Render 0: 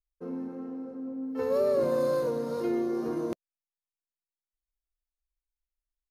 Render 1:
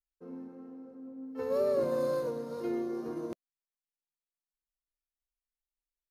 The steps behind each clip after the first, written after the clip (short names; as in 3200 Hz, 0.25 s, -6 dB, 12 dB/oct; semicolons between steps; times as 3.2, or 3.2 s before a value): upward expander 1.5:1, over -37 dBFS; gain -2.5 dB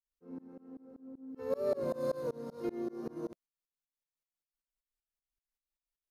low shelf 180 Hz +4.5 dB; tremolo saw up 5.2 Hz, depth 100%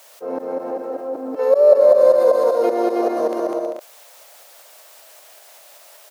resonant high-pass 610 Hz, resonance Q 4.5; bouncing-ball echo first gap 0.2 s, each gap 0.6×, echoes 5; fast leveller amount 50%; gain +8 dB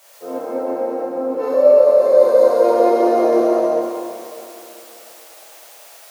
limiter -8 dBFS, peak gain reduction 6.5 dB; plate-style reverb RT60 2.9 s, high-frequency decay 0.95×, DRR -8 dB; gain -5 dB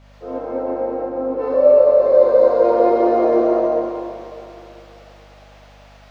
hum 50 Hz, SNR 31 dB; air absorption 220 m